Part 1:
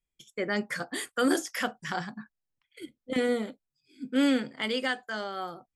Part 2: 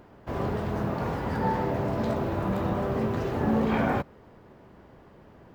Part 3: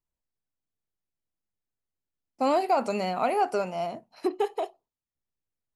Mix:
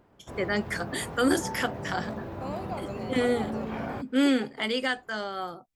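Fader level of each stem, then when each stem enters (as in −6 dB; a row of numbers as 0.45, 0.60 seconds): +1.5, −9.0, −13.5 decibels; 0.00, 0.00, 0.00 seconds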